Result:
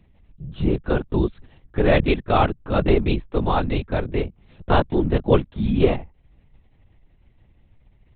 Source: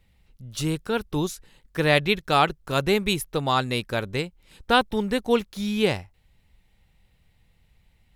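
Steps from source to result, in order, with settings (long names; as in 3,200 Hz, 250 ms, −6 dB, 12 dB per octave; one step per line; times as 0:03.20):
tilt shelving filter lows +6.5 dB, about 1,200 Hz
linear-prediction vocoder at 8 kHz whisper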